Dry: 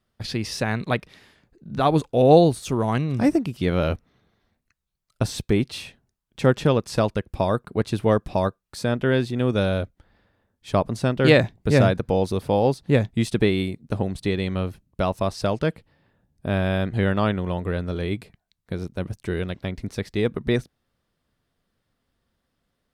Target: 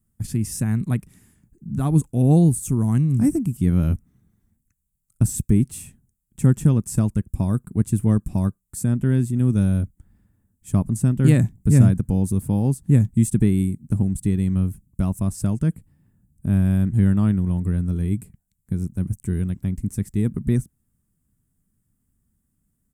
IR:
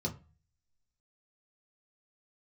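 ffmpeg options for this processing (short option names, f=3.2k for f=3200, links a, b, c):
-af "firequalizer=gain_entry='entry(200,0);entry(510,-22);entry(920,-18);entry(1700,-18);entry(2600,-20);entry(4100,-25);entry(7600,4)':delay=0.05:min_phase=1,volume=6.5dB"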